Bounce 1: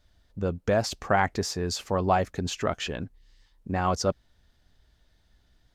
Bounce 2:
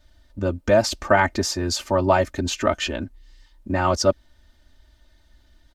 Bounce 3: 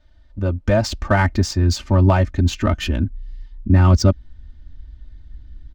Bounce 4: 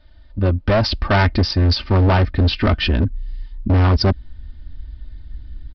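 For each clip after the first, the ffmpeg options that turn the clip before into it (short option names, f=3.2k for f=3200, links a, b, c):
-af "aecho=1:1:3.3:1,volume=3.5dB"
-af "adynamicsmooth=sensitivity=3:basefreq=4.5k,asubboost=boost=11:cutoff=200"
-af "crystalizer=i=1:c=0,aresample=11025,asoftclip=type=hard:threshold=-16.5dB,aresample=44100,volume=5dB"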